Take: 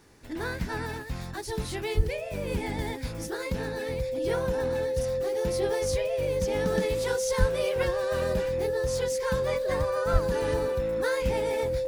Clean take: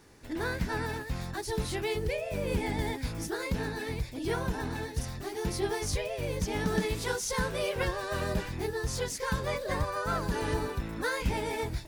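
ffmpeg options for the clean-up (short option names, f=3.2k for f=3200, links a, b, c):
-filter_complex "[0:a]bandreject=f=520:w=30,asplit=3[a][b][c];[a]afade=t=out:st=1.96:d=0.02[d];[b]highpass=f=140:w=0.5412,highpass=f=140:w=1.3066,afade=t=in:st=1.96:d=0.02,afade=t=out:st=2.08:d=0.02[e];[c]afade=t=in:st=2.08:d=0.02[f];[d][e][f]amix=inputs=3:normalize=0,asplit=3[g][h][i];[g]afade=t=out:st=7.39:d=0.02[j];[h]highpass=f=140:w=0.5412,highpass=f=140:w=1.3066,afade=t=in:st=7.39:d=0.02,afade=t=out:st=7.51:d=0.02[k];[i]afade=t=in:st=7.51:d=0.02[l];[j][k][l]amix=inputs=3:normalize=0,asplit=3[m][n][o];[m]afade=t=out:st=10.12:d=0.02[p];[n]highpass=f=140:w=0.5412,highpass=f=140:w=1.3066,afade=t=in:st=10.12:d=0.02,afade=t=out:st=10.24:d=0.02[q];[o]afade=t=in:st=10.24:d=0.02[r];[p][q][r]amix=inputs=3:normalize=0"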